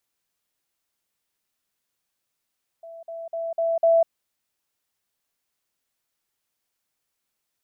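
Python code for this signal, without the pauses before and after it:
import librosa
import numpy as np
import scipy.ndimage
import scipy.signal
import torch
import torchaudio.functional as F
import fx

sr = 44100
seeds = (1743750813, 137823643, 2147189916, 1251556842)

y = fx.level_ladder(sr, hz=664.0, from_db=-38.0, step_db=6.0, steps=5, dwell_s=0.2, gap_s=0.05)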